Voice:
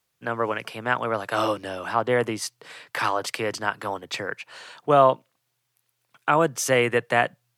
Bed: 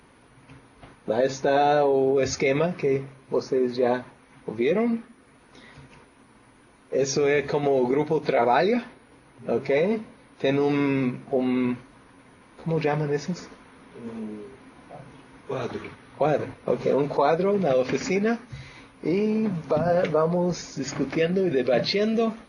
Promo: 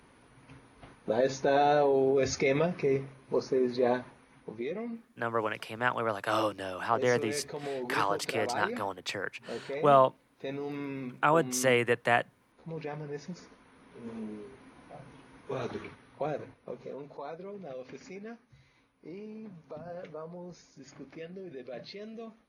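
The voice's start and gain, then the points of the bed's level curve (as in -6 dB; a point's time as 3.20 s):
4.95 s, -5.0 dB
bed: 4.19 s -4.5 dB
4.76 s -14.5 dB
13.00 s -14.5 dB
14.12 s -5.5 dB
15.82 s -5.5 dB
16.99 s -20.5 dB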